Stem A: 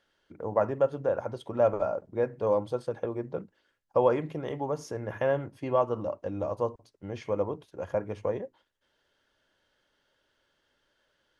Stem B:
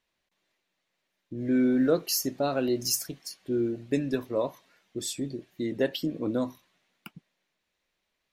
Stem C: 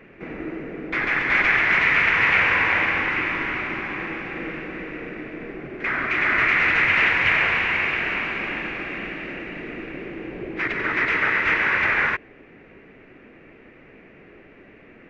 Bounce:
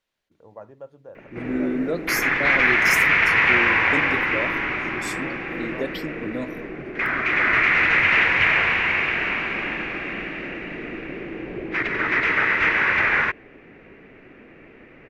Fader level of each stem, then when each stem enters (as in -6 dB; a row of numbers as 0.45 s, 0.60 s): -15.5 dB, -2.0 dB, +1.0 dB; 0.00 s, 0.00 s, 1.15 s